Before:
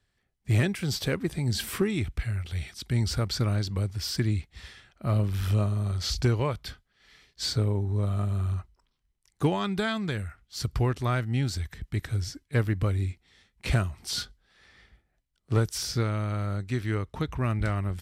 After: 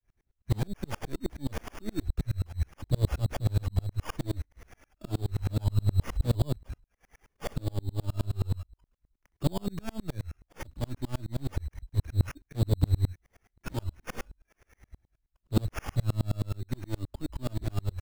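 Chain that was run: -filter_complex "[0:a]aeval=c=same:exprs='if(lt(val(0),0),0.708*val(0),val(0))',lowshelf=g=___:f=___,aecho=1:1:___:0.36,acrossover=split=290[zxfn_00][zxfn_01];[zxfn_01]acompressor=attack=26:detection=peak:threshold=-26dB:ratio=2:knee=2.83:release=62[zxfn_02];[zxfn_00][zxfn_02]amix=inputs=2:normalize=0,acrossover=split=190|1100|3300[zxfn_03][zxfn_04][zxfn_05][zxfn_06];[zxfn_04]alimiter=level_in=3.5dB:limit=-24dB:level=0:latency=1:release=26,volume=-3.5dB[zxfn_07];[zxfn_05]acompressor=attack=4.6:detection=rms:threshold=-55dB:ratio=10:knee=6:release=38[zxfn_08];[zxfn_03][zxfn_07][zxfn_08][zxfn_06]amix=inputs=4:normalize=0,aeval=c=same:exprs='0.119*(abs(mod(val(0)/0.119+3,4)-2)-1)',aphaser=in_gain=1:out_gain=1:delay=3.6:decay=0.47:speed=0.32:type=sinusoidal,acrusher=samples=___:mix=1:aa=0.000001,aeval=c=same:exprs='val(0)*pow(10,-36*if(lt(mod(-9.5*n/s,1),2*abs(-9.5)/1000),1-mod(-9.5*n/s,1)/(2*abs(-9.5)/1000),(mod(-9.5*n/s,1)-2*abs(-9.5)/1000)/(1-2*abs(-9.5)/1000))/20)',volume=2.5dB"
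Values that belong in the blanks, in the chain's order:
8, 180, 3.1, 11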